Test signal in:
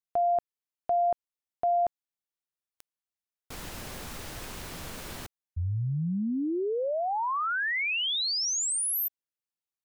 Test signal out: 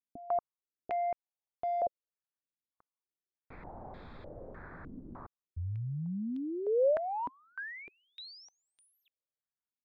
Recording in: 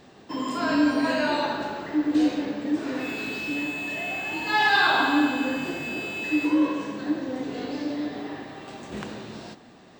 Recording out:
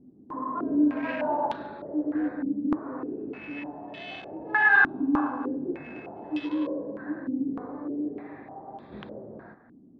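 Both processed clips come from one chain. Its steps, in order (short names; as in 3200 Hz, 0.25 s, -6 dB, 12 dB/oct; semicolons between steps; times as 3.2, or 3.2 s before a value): Wiener smoothing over 15 samples; air absorption 61 m; stepped low-pass 3.3 Hz 270–3400 Hz; gain -7 dB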